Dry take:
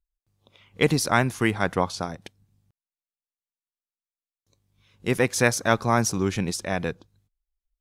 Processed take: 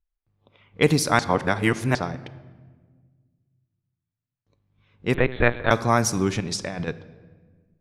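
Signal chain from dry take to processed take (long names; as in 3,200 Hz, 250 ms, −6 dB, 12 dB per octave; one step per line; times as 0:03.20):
low-pass that shuts in the quiet parts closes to 2,300 Hz, open at −17.5 dBFS
0:01.19–0:01.95: reverse
0:06.40–0:06.88: compressor whose output falls as the input rises −32 dBFS, ratio −1
rectangular room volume 1,500 cubic metres, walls mixed, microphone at 0.36 metres
0:05.14–0:05.71: linear-prediction vocoder at 8 kHz pitch kept
level +1.5 dB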